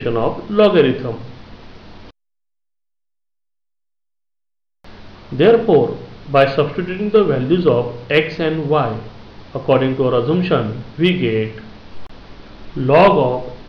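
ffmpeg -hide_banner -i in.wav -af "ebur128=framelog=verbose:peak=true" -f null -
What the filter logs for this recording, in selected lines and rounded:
Integrated loudness:
  I:         -15.8 LUFS
  Threshold: -27.3 LUFS
Loudness range:
  LRA:         5.2 LU
  Threshold: -38.5 LUFS
  LRA low:   -20.9 LUFS
  LRA high:  -15.7 LUFS
True peak:
  Peak:       -3.6 dBFS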